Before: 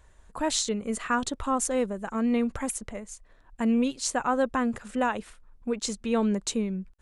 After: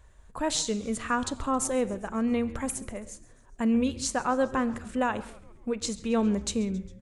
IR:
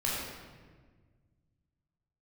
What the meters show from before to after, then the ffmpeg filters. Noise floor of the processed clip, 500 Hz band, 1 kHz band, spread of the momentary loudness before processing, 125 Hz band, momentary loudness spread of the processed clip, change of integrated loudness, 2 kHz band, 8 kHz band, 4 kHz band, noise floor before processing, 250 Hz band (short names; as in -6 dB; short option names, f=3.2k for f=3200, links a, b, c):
-55 dBFS, -0.5 dB, -1.0 dB, 11 LU, +1.5 dB, 12 LU, -1.0 dB, -1.5 dB, -1.0 dB, -1.0 dB, -58 dBFS, -0.5 dB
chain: -filter_complex "[0:a]equalizer=f=70:w=0.44:g=3.5,asplit=6[a][b][c][d][e][f];[b]adelay=135,afreqshift=-150,volume=-21dB[g];[c]adelay=270,afreqshift=-300,volume=-25.3dB[h];[d]adelay=405,afreqshift=-450,volume=-29.6dB[i];[e]adelay=540,afreqshift=-600,volume=-33.9dB[j];[f]adelay=675,afreqshift=-750,volume=-38.2dB[k];[a][g][h][i][j][k]amix=inputs=6:normalize=0,asplit=2[l][m];[1:a]atrim=start_sample=2205,afade=t=out:st=0.25:d=0.01,atrim=end_sample=11466[n];[m][n]afir=irnorm=-1:irlink=0,volume=-20.5dB[o];[l][o]amix=inputs=2:normalize=0,volume=-2dB"